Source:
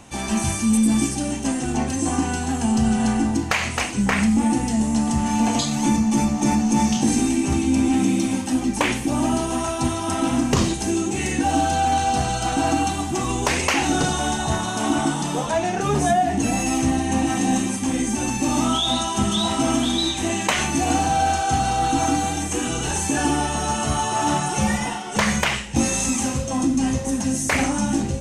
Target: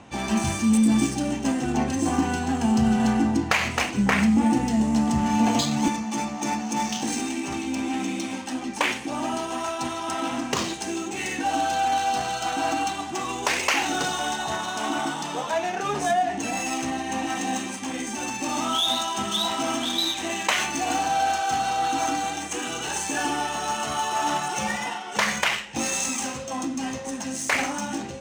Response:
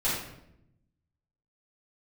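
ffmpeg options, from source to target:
-af "asetnsamples=nb_out_samples=441:pad=0,asendcmd='5.88 highpass f 750',highpass=frequency=110:poles=1,adynamicsmooth=sensitivity=3.5:basefreq=4200"

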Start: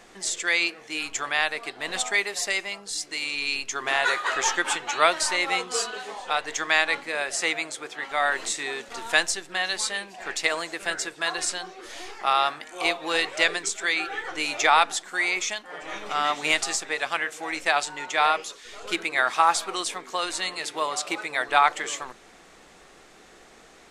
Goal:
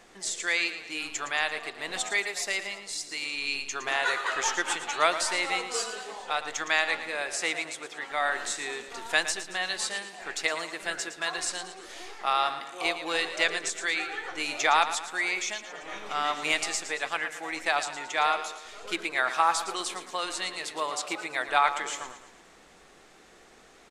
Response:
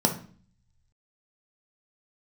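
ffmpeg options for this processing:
-af "aecho=1:1:113|226|339|452|565:0.266|0.125|0.0588|0.0276|0.013,volume=-4dB"

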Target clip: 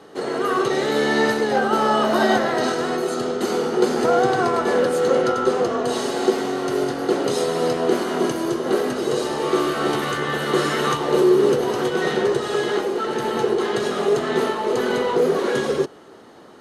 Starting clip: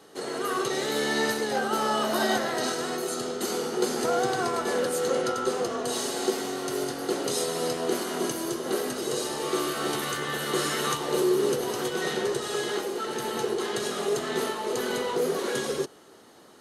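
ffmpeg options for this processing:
ffmpeg -i in.wav -af "lowpass=frequency=2100:poles=1,volume=8.5dB" out.wav

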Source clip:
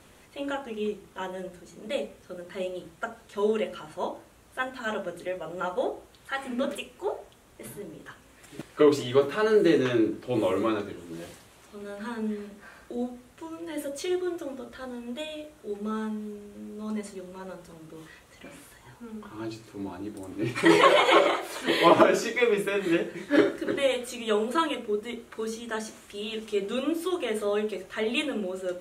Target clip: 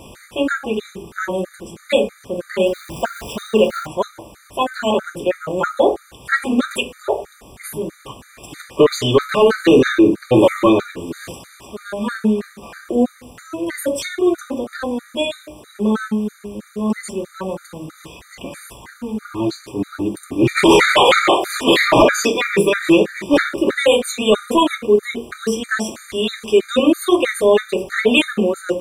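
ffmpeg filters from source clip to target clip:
ffmpeg -i in.wav -filter_complex "[0:a]asettb=1/sr,asplit=3[link_01][link_02][link_03];[link_01]atrim=end=2.664[link_04];[link_02]atrim=start=2.66:end=3.87,asetpts=PTS-STARTPTS,afade=type=in:duration=0.004:curve=qsin,afade=type=out:start_time=1.206:duration=0.004:curve=qsin,aeval=exprs='val(0)+0.5*0.0075*sgn(val(0))':channel_layout=same[link_05];[link_03]atrim=start=3.866[link_06];[link_04][link_05]acrossfade=duration=0.004:curve1=hsin:curve2=qsin[link_07];[link_07][link_06]acrossfade=duration=0.004:curve1=qsin:curve2=hsin,apsyclip=20dB,afftfilt=real='re*gt(sin(2*PI*3.1*pts/sr)*(1-2*mod(floor(b*sr/1024/1200),2)),0)':imag='im*gt(sin(2*PI*3.1*pts/sr)*(1-2*mod(floor(b*sr/1024/1200),2)),0)':win_size=1024:overlap=0.75,volume=-4dB" out.wav

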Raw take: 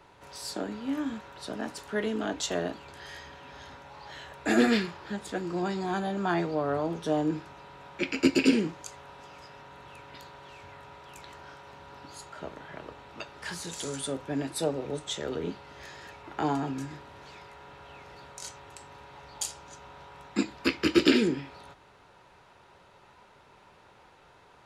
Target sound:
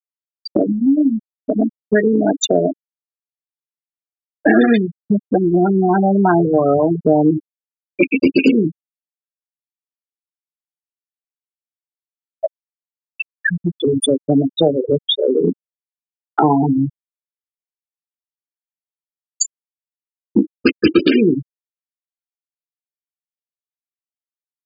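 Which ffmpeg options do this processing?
ffmpeg -i in.wav -filter_complex "[0:a]asettb=1/sr,asplit=3[link_01][link_02][link_03];[link_01]atrim=end=4.774[link_04];[link_02]atrim=start=4.77:end=6.95,asetpts=PTS-STARTPTS,afade=type=in:duration=0.004:curve=qsin,afade=type=out:start_time=2.176:duration=0.004:curve=qsin,equalizer=frequency=8500:width_type=o:width=2.5:gain=-13.5[link_05];[link_03]atrim=start=6.946[link_06];[link_04][link_05]acrossfade=duration=0.004:curve1=hsin:curve2=qsin[link_07];[link_07][link_06]acrossfade=duration=0.004:curve1=qsin:curve2=hsin,afftfilt=real='re*gte(hypot(re,im),0.0891)':imag='im*gte(hypot(re,im),0.0891)':win_size=1024:overlap=0.75,acompressor=threshold=-46dB:ratio=3,alimiter=level_in=31dB:limit=-1dB:release=50:level=0:latency=1,volume=-1dB" out.wav

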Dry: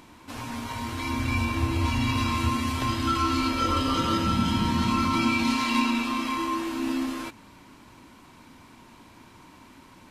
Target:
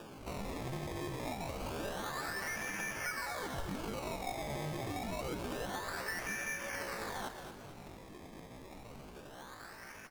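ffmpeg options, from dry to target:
ffmpeg -i in.wav -filter_complex "[0:a]highpass=frequency=470:width=0.5412,highpass=frequency=470:width=1.3066,acompressor=threshold=-40dB:ratio=16,acrusher=samples=35:mix=1:aa=0.000001:lfo=1:lforange=35:lforate=0.27,asetrate=74167,aresample=44100,atempo=0.594604,asplit=6[link_01][link_02][link_03][link_04][link_05][link_06];[link_02]adelay=224,afreqshift=-48,volume=-9dB[link_07];[link_03]adelay=448,afreqshift=-96,volume=-15.9dB[link_08];[link_04]adelay=672,afreqshift=-144,volume=-22.9dB[link_09];[link_05]adelay=896,afreqshift=-192,volume=-29.8dB[link_10];[link_06]adelay=1120,afreqshift=-240,volume=-36.7dB[link_11];[link_01][link_07][link_08][link_09][link_10][link_11]amix=inputs=6:normalize=0,volume=3.5dB" out.wav

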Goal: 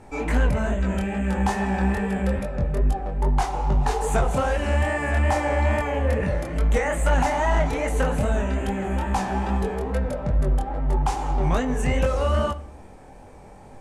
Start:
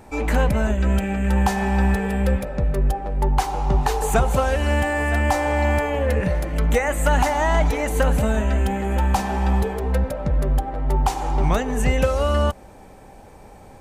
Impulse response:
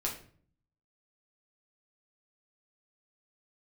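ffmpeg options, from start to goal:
-filter_complex "[0:a]lowpass=frequency=11000:width=0.5412,lowpass=frequency=11000:width=1.3066,flanger=delay=19.5:depth=6.9:speed=2.4,asoftclip=type=tanh:threshold=-13dB,asplit=2[link_01][link_02];[1:a]atrim=start_sample=2205,asetrate=36603,aresample=44100,lowpass=frequency=4500:width=0.5412,lowpass=frequency=4500:width=1.3066[link_03];[link_02][link_03]afir=irnorm=-1:irlink=0,volume=-14dB[link_04];[link_01][link_04]amix=inputs=2:normalize=0"

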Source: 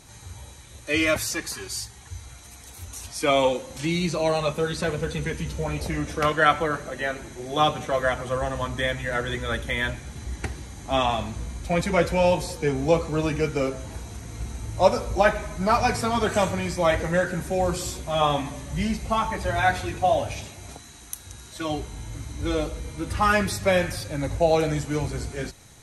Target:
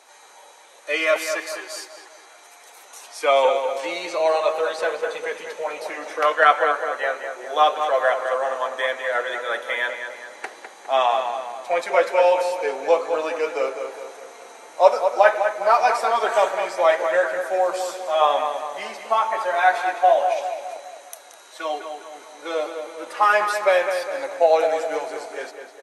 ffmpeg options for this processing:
ffmpeg -i in.wav -filter_complex "[0:a]highpass=frequency=510:width=0.5412,highpass=frequency=510:width=1.3066,highshelf=frequency=2800:gain=-11.5,asplit=2[link_01][link_02];[link_02]adelay=204,lowpass=frequency=3200:poles=1,volume=-7dB,asplit=2[link_03][link_04];[link_04]adelay=204,lowpass=frequency=3200:poles=1,volume=0.5,asplit=2[link_05][link_06];[link_06]adelay=204,lowpass=frequency=3200:poles=1,volume=0.5,asplit=2[link_07][link_08];[link_08]adelay=204,lowpass=frequency=3200:poles=1,volume=0.5,asplit=2[link_09][link_10];[link_10]adelay=204,lowpass=frequency=3200:poles=1,volume=0.5,asplit=2[link_11][link_12];[link_12]adelay=204,lowpass=frequency=3200:poles=1,volume=0.5[link_13];[link_01][link_03][link_05][link_07][link_09][link_11][link_13]amix=inputs=7:normalize=0,volume=6dB" out.wav

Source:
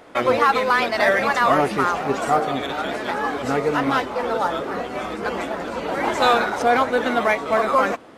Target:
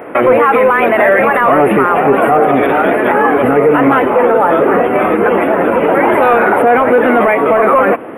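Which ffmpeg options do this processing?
ffmpeg -i in.wav -af "highpass=100,equalizer=frequency=420:width_type=o:width=1.2:gain=5,asoftclip=type=tanh:threshold=-7.5dB,asuperstop=centerf=5500:order=8:qfactor=0.72,alimiter=level_in=16dB:limit=-1dB:release=50:level=0:latency=1,volume=-1dB" out.wav

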